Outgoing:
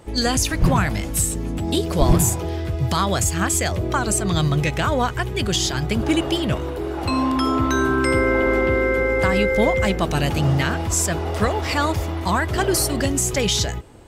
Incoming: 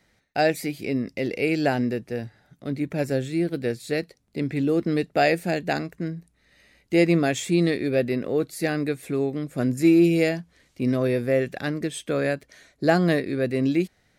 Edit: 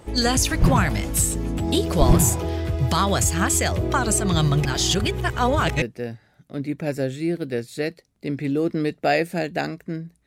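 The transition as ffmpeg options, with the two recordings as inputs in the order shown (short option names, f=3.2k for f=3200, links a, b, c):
-filter_complex "[0:a]apad=whole_dur=10.26,atrim=end=10.26,asplit=2[a][b];[a]atrim=end=4.652[c];[b]atrim=start=4.648:end=5.822,asetpts=PTS-STARTPTS,areverse[d];[1:a]atrim=start=1.938:end=6.38[e];[c][d]acrossfade=d=0.004:c1=hsin:c2=hsin[f];[f][e]acrossfade=d=0.004:c1=hsin:c2=hsin"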